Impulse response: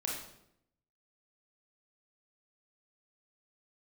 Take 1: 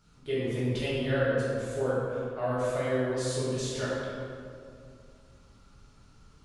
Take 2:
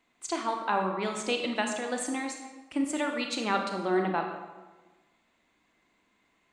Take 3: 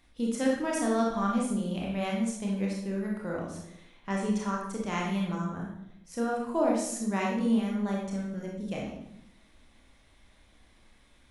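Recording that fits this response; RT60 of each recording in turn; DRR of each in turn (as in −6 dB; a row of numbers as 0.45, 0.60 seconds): 3; 2.4, 1.2, 0.75 seconds; −10.0, 3.0, −3.0 decibels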